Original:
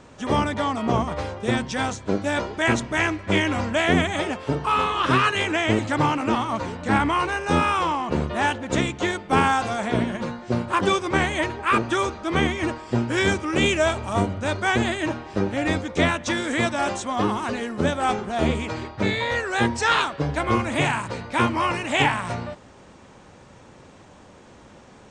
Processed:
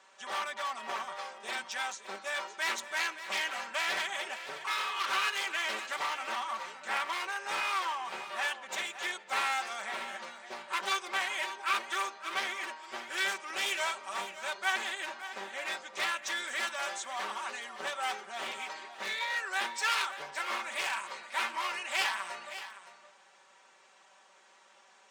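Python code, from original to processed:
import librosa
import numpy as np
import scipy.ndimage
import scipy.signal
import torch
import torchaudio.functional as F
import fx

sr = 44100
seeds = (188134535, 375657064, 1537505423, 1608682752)

y = np.minimum(x, 2.0 * 10.0 ** (-21.5 / 20.0) - x)
y = scipy.signal.sosfilt(scipy.signal.butter(2, 1000.0, 'highpass', fs=sr, output='sos'), y)
y = y + 0.68 * np.pad(y, (int(5.2 * sr / 1000.0), 0))[:len(y)]
y = y + 10.0 ** (-12.5 / 20.0) * np.pad(y, (int(566 * sr / 1000.0), 0))[:len(y)]
y = F.gain(torch.from_numpy(y), -8.0).numpy()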